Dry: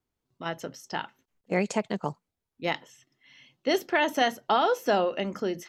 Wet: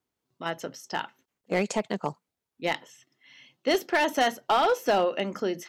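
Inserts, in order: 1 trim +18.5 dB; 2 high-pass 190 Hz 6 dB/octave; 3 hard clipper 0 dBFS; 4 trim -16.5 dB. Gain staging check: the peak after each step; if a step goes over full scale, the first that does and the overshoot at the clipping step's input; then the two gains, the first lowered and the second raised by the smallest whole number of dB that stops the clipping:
+6.0 dBFS, +7.0 dBFS, 0.0 dBFS, -16.5 dBFS; step 1, 7.0 dB; step 1 +11.5 dB, step 4 -9.5 dB

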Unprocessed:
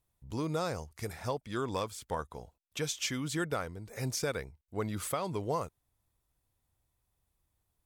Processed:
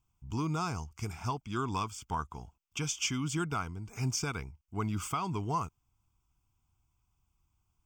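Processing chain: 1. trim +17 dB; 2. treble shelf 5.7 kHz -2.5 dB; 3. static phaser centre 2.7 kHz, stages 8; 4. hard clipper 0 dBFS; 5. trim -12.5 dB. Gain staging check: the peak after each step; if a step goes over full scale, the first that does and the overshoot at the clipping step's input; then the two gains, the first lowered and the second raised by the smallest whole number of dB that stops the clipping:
-5.5 dBFS, -5.5 dBFS, -5.5 dBFS, -5.5 dBFS, -18.0 dBFS; nothing clips

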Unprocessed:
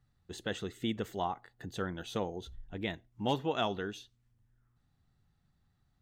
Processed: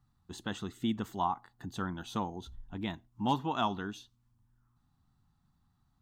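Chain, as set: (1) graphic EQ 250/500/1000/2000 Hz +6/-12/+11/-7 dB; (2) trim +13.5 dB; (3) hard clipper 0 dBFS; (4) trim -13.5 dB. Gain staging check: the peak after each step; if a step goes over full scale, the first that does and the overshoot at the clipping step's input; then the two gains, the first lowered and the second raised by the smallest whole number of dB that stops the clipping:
-17.0 dBFS, -3.5 dBFS, -3.5 dBFS, -17.0 dBFS; nothing clips

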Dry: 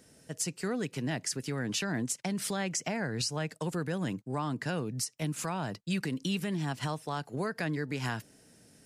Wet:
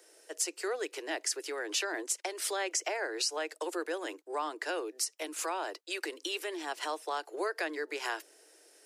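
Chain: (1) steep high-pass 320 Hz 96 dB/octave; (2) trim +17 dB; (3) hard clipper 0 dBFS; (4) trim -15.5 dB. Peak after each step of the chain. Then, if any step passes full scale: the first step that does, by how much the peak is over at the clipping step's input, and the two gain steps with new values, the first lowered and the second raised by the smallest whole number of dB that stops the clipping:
-19.5 dBFS, -2.5 dBFS, -2.5 dBFS, -18.0 dBFS; nothing clips

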